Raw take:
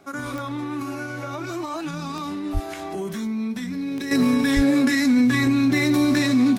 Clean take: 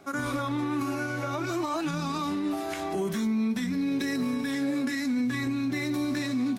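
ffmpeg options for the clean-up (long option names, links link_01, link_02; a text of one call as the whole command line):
ffmpeg -i in.wav -filter_complex "[0:a]adeclick=threshold=4,asplit=3[link_01][link_02][link_03];[link_01]afade=type=out:start_time=2.53:duration=0.02[link_04];[link_02]highpass=frequency=140:width=0.5412,highpass=frequency=140:width=1.3066,afade=type=in:start_time=2.53:duration=0.02,afade=type=out:start_time=2.65:duration=0.02[link_05];[link_03]afade=type=in:start_time=2.65:duration=0.02[link_06];[link_04][link_05][link_06]amix=inputs=3:normalize=0,asplit=3[link_07][link_08][link_09];[link_07]afade=type=out:start_time=4.55:duration=0.02[link_10];[link_08]highpass=frequency=140:width=0.5412,highpass=frequency=140:width=1.3066,afade=type=in:start_time=4.55:duration=0.02,afade=type=out:start_time=4.67:duration=0.02[link_11];[link_09]afade=type=in:start_time=4.67:duration=0.02[link_12];[link_10][link_11][link_12]amix=inputs=3:normalize=0,asetnsamples=nb_out_samples=441:pad=0,asendcmd='4.11 volume volume -10dB',volume=0dB" out.wav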